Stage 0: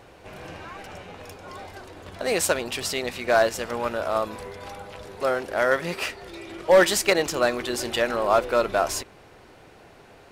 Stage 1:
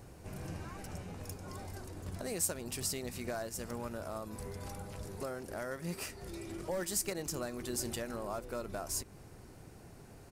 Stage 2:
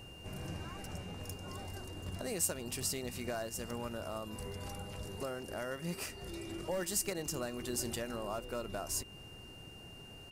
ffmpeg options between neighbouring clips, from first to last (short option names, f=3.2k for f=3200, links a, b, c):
-af "acompressor=threshold=-33dB:ratio=2.5,firequalizer=gain_entry='entry(150,0);entry(270,-5);entry(510,-12);entry(3400,-16);entry(4900,-7);entry(8800,0)':delay=0.05:min_phase=1,volume=3dB"
-af "aeval=exprs='val(0)+0.00224*sin(2*PI*2800*n/s)':c=same"